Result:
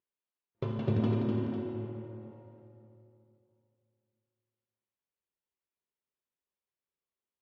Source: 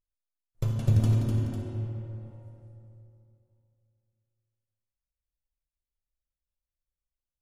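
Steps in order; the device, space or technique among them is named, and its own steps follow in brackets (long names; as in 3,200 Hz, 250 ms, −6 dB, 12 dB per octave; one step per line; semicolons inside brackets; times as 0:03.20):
kitchen radio (loudspeaker in its box 180–3,500 Hz, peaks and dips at 220 Hz +4 dB, 400 Hz +10 dB, 990 Hz +5 dB)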